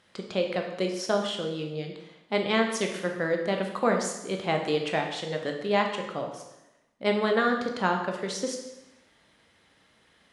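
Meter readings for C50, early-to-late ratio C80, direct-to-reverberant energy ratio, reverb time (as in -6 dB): 6.0 dB, 8.5 dB, 2.5 dB, 0.95 s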